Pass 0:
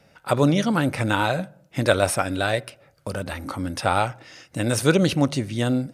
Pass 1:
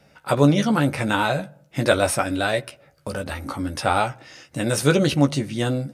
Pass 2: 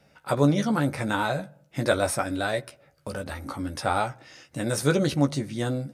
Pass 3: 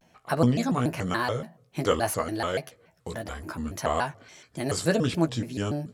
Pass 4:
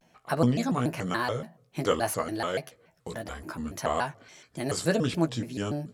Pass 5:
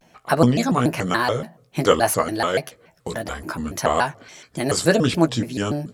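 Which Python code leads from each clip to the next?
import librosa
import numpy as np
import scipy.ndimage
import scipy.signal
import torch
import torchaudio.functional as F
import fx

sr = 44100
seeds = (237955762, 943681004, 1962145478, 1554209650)

y1 = fx.doubler(x, sr, ms=14.0, db=-6.0)
y2 = fx.dynamic_eq(y1, sr, hz=2800.0, q=3.5, threshold_db=-47.0, ratio=4.0, max_db=-7)
y2 = F.gain(torch.from_numpy(y2), -4.5).numpy()
y3 = fx.vibrato_shape(y2, sr, shape='square', rate_hz=3.5, depth_cents=250.0)
y3 = F.gain(torch.from_numpy(y3), -1.5).numpy()
y4 = fx.peak_eq(y3, sr, hz=87.0, db=-12.0, octaves=0.25)
y4 = F.gain(torch.from_numpy(y4), -1.5).numpy()
y5 = fx.hpss(y4, sr, part='percussive', gain_db=4)
y5 = F.gain(torch.from_numpy(y5), 6.0).numpy()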